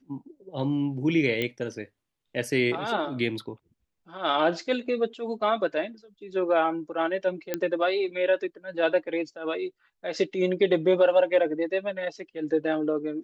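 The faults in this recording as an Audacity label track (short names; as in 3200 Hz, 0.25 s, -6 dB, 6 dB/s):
1.420000	1.420000	pop -15 dBFS
7.540000	7.540000	pop -12 dBFS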